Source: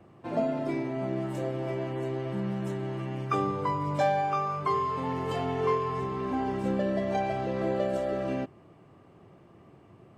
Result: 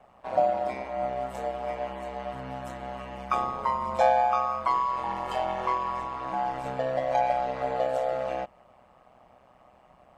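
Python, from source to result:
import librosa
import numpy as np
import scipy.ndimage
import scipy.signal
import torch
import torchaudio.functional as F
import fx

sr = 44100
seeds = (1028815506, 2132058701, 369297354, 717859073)

y = fx.low_shelf_res(x, sr, hz=510.0, db=-8.5, q=3.0)
y = y * np.sin(2.0 * np.pi * 64.0 * np.arange(len(y)) / sr)
y = F.gain(torch.from_numpy(y), 3.5).numpy()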